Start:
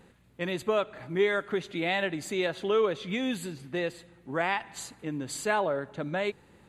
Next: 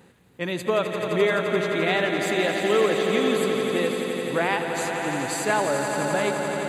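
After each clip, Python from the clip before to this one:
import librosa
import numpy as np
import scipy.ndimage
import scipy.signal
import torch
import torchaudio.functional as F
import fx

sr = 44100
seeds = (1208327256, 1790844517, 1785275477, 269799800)

y = scipy.signal.sosfilt(scipy.signal.butter(2, 88.0, 'highpass', fs=sr, output='sos'), x)
y = fx.high_shelf(y, sr, hz=9200.0, db=5.0)
y = fx.echo_swell(y, sr, ms=86, loudest=5, wet_db=-9)
y = y * librosa.db_to_amplitude(3.5)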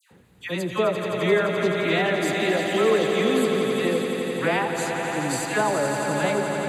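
y = fx.low_shelf(x, sr, hz=150.0, db=6.0)
y = fx.dispersion(y, sr, late='lows', ms=112.0, hz=1600.0)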